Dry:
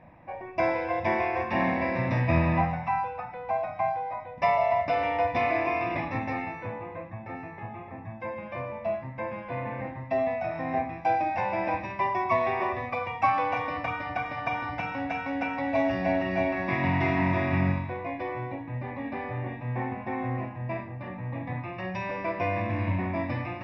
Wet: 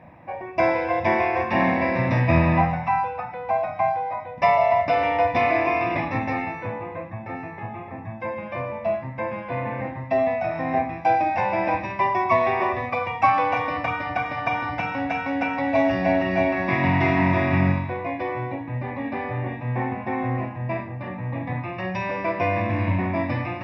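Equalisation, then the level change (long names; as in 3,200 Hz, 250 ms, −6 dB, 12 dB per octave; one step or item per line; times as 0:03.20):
high-pass filter 61 Hz
+5.5 dB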